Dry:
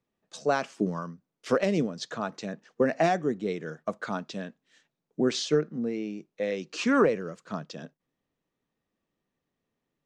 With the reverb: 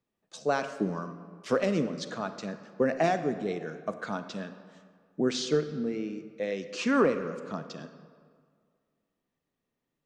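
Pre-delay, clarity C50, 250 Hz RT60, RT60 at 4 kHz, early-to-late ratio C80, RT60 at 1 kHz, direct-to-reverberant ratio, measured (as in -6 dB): 32 ms, 11.0 dB, 2.0 s, 1.2 s, 11.5 dB, 1.9 s, 10.0 dB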